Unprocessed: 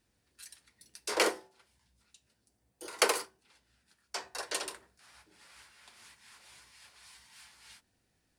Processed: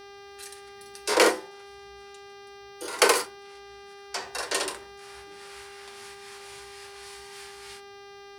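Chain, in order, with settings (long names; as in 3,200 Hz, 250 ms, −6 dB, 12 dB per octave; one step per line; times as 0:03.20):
harmonic and percussive parts rebalanced harmonic +9 dB
hum with harmonics 400 Hz, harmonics 15, −51 dBFS −5 dB per octave
level +4.5 dB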